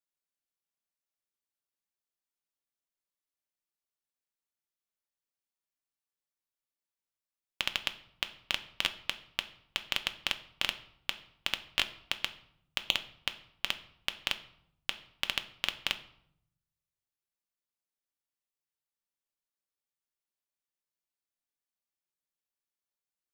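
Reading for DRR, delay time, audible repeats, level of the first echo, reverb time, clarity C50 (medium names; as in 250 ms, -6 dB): 8.0 dB, no echo, no echo, no echo, 0.70 s, 15.0 dB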